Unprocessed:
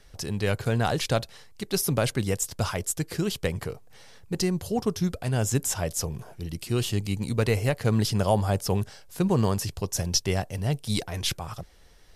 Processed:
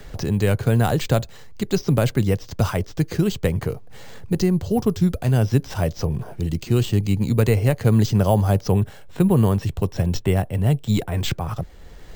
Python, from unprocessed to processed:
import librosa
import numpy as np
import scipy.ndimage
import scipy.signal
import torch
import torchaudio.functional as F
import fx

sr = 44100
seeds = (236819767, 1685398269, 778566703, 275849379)

y = fx.peak_eq(x, sr, hz=4800.0, db=-14.0, octaves=0.26, at=(8.72, 11.17))
y = np.repeat(scipy.signal.resample_poly(y, 1, 4), 4)[:len(y)]
y = fx.low_shelf(y, sr, hz=480.0, db=7.0)
y = fx.band_squash(y, sr, depth_pct=40)
y = y * librosa.db_to_amplitude(1.5)